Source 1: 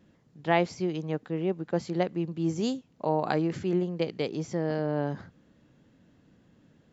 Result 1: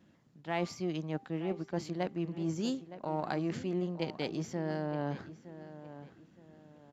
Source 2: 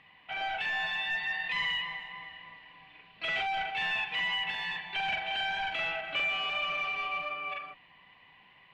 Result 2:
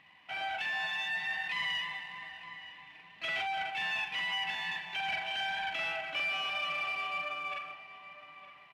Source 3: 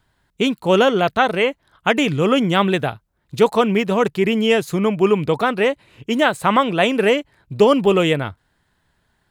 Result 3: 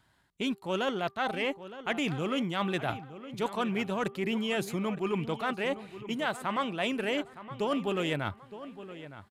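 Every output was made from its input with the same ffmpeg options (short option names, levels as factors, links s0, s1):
-filter_complex "[0:a]aeval=exprs='if(lt(val(0),0),0.708*val(0),val(0))':c=same,highpass=f=110:p=1,equalizer=f=460:t=o:w=0.41:g=-5.5,bandreject=f=394.5:t=h:w=4,bandreject=f=789:t=h:w=4,bandreject=f=1183.5:t=h:w=4,areverse,acompressor=threshold=0.0316:ratio=4,areverse,asplit=2[s0][s1];[s1]adelay=915,lowpass=f=2800:p=1,volume=0.211,asplit=2[s2][s3];[s3]adelay=915,lowpass=f=2800:p=1,volume=0.33,asplit=2[s4][s5];[s5]adelay=915,lowpass=f=2800:p=1,volume=0.33[s6];[s0][s2][s4][s6]amix=inputs=4:normalize=0,aresample=32000,aresample=44100"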